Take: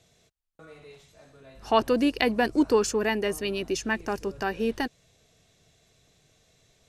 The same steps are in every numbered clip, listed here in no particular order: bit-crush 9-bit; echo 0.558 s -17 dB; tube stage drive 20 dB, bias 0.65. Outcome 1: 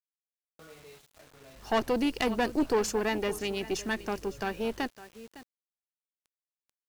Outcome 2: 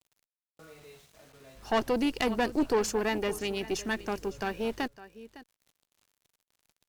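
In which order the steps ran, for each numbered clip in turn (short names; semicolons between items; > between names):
echo > tube stage > bit-crush; bit-crush > echo > tube stage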